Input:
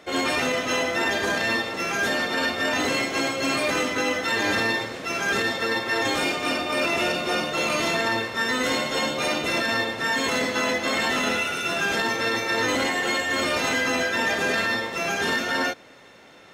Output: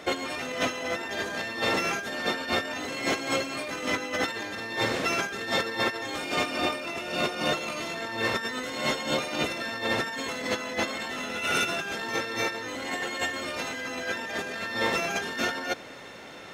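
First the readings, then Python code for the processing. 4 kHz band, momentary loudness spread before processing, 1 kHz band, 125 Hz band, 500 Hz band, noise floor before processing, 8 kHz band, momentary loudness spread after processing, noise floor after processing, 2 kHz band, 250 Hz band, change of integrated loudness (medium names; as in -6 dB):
-5.0 dB, 2 LU, -5.0 dB, -3.5 dB, -5.0 dB, -48 dBFS, -5.5 dB, 6 LU, -43 dBFS, -6.5 dB, -5.5 dB, -5.5 dB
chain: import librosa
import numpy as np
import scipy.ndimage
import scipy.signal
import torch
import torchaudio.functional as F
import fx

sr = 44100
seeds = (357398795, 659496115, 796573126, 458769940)

y = fx.over_compress(x, sr, threshold_db=-29.0, ratio=-0.5)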